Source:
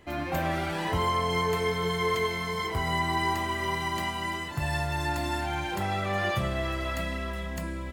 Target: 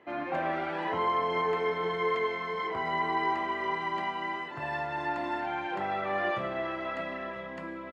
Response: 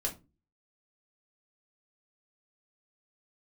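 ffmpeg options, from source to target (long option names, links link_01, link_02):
-filter_complex "[0:a]highpass=300,lowpass=2100,asplit=2[link_01][link_02];[link_02]adelay=991.3,volume=-15dB,highshelf=frequency=4000:gain=-22.3[link_03];[link_01][link_03]amix=inputs=2:normalize=0"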